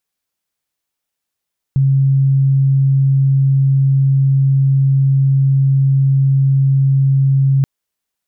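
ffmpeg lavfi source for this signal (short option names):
-f lavfi -i "aevalsrc='0.355*sin(2*PI*136*t)':d=5.88:s=44100"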